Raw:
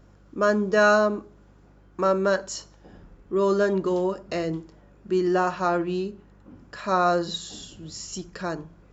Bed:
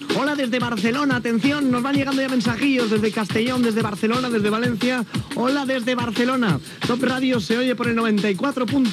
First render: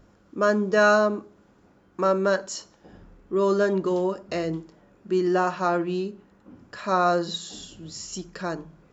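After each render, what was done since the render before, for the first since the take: de-hum 50 Hz, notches 3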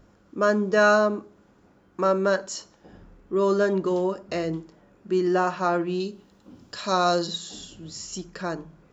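6–7.27 resonant high shelf 2700 Hz +8 dB, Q 1.5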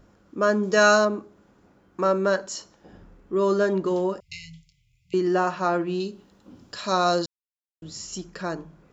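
0.63–1.05 high shelf 3600 Hz +12 dB; 4.2–5.14 brick-wall FIR band-stop 150–2000 Hz; 7.26–7.82 mute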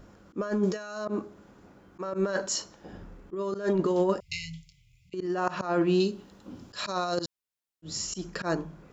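negative-ratio compressor -25 dBFS, ratio -0.5; auto swell 0.101 s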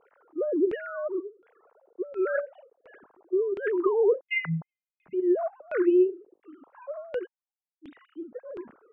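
sine-wave speech; LFO low-pass saw down 1.4 Hz 270–2500 Hz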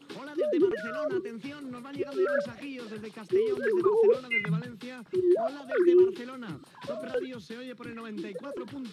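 add bed -21 dB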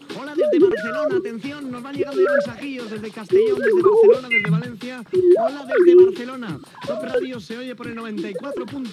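gain +10 dB

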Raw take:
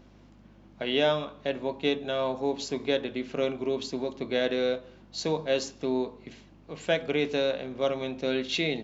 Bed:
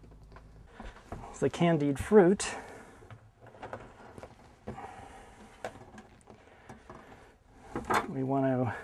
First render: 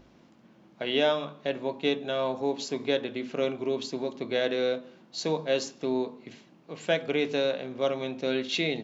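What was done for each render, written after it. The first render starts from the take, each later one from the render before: de-hum 50 Hz, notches 5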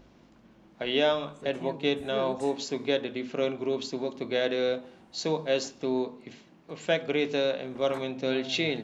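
add bed -15 dB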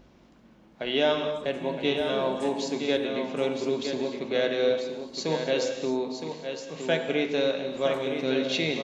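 echo 0.965 s -7.5 dB; non-linear reverb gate 0.3 s flat, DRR 6.5 dB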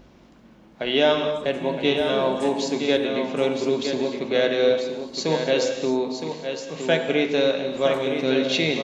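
gain +5 dB

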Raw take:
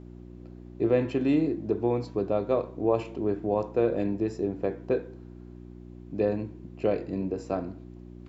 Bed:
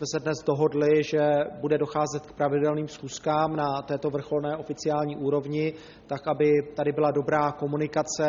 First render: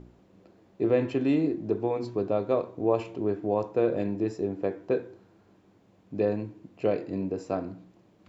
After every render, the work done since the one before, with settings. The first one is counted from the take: de-hum 60 Hz, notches 6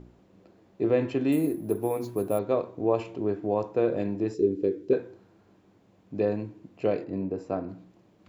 1.32–2.39 careless resampling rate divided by 4×, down none, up hold; 4.34–4.93 EQ curve 180 Hz 0 dB, 420 Hz +8 dB, 720 Hz -21 dB, 3900 Hz 0 dB; 7.04–7.69 high shelf 2900 Hz -10.5 dB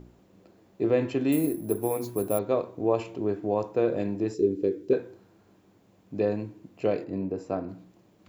high shelf 7800 Hz +11 dB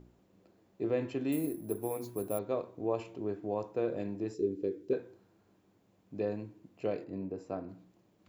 gain -8 dB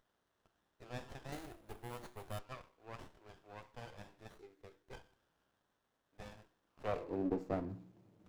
high-pass sweep 1800 Hz -> 100 Hz, 6.62–7.65; running maximum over 17 samples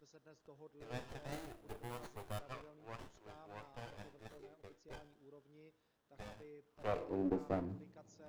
add bed -35 dB

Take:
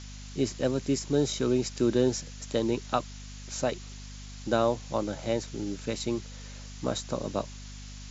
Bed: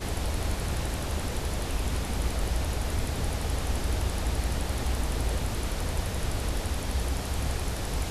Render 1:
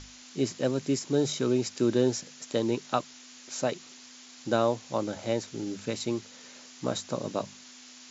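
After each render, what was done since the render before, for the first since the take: notches 50/100/150/200 Hz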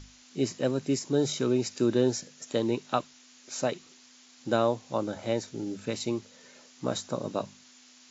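noise print and reduce 6 dB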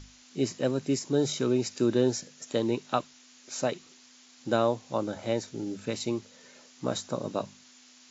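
nothing audible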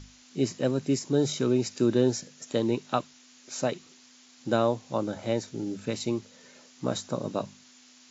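bell 150 Hz +3 dB 2 oct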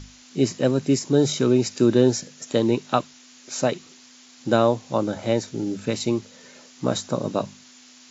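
gain +6 dB

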